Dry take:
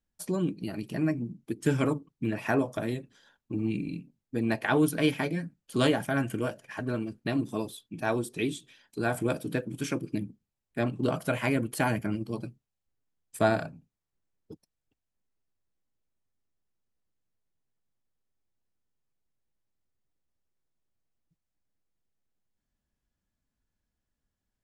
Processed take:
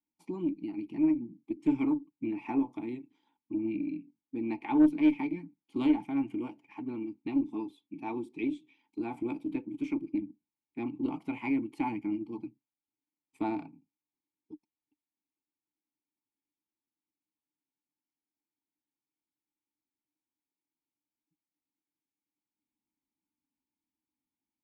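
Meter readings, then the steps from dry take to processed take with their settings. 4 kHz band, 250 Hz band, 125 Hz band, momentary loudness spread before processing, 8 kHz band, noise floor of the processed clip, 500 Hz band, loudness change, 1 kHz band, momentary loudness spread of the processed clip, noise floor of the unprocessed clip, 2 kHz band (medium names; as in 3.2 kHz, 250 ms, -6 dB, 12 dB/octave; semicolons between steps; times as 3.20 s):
under -15 dB, +1.0 dB, -15.5 dB, 11 LU, under -25 dB, under -85 dBFS, -9.5 dB, -2.5 dB, -6.0 dB, 14 LU, under -85 dBFS, -12.0 dB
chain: vowel filter u; Chebyshev shaper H 2 -17 dB, 4 -29 dB, 5 -29 dB, 6 -37 dB, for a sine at -18.5 dBFS; trim +4.5 dB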